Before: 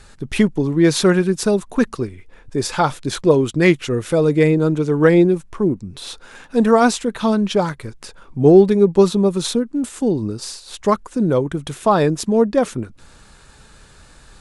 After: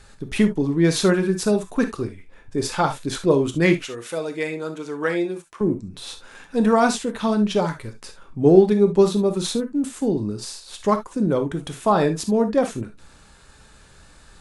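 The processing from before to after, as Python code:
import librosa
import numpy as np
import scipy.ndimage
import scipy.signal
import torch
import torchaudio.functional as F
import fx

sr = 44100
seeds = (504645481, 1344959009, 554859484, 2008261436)

y = fx.highpass(x, sr, hz=920.0, slope=6, at=(3.84, 5.61))
y = fx.rev_gated(y, sr, seeds[0], gate_ms=90, shape='flat', drr_db=6.5)
y = F.gain(torch.from_numpy(y), -4.0).numpy()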